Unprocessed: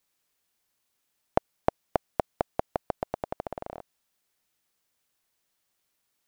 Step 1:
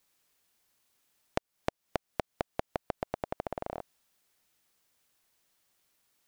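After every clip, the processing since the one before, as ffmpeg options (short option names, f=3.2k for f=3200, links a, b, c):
-af "acompressor=threshold=-33dB:ratio=5,volume=3.5dB"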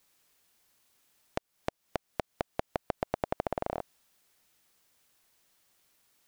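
-af "alimiter=limit=-16dB:level=0:latency=1:release=31,volume=4dB"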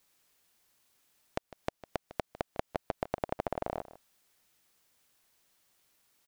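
-af "aecho=1:1:153:0.15,volume=-1.5dB"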